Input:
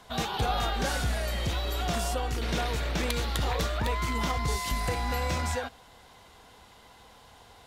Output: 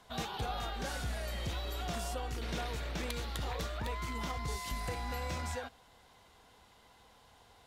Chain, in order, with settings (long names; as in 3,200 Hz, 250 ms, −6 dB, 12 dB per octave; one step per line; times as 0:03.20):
speech leveller 0.5 s
level −8.5 dB